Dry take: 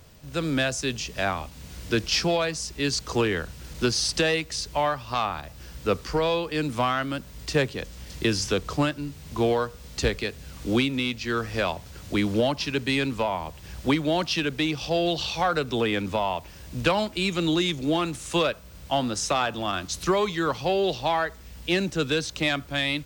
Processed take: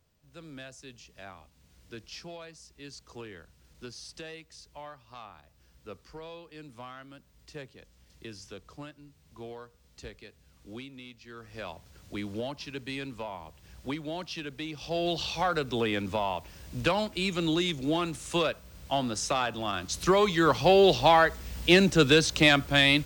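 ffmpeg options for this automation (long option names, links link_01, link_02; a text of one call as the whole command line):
ffmpeg -i in.wav -af "volume=4.5dB,afade=type=in:start_time=11.36:duration=0.41:silence=0.398107,afade=type=in:start_time=14.71:duration=0.42:silence=0.398107,afade=type=in:start_time=19.78:duration=1.03:silence=0.375837" out.wav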